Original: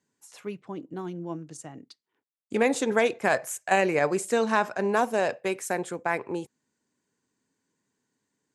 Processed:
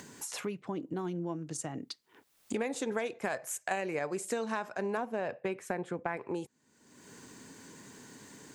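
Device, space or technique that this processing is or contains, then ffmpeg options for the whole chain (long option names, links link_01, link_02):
upward and downward compression: -filter_complex "[0:a]asettb=1/sr,asplit=3[link_01][link_02][link_03];[link_01]atrim=end=4.974[link_04];[link_02]atrim=start=4.97:end=6.17,asetpts=PTS-STARTPTS,afade=type=in:duration=0.004:curve=qsin,afade=type=out:start_time=1.196:duration=0.004:curve=qsin,bass=frequency=250:gain=5,treble=frequency=4000:gain=-14[link_05];[link_03]atrim=start=6.166[link_06];[link_04][link_05]acrossfade=duration=0.004:curve1=hsin:curve2=qsin[link_07];[link_07][link_06]acrossfade=duration=0.004:curve1=qsin:curve2=hsin,acompressor=mode=upward:threshold=-33dB:ratio=2.5,acompressor=threshold=-34dB:ratio=5,volume=2dB"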